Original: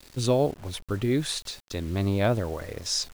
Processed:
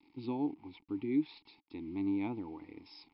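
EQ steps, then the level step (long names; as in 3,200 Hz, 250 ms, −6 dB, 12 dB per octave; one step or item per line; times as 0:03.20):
formant filter u
linear-phase brick-wall low-pass 5,400 Hz
bass and treble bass +2 dB, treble +3 dB
0.0 dB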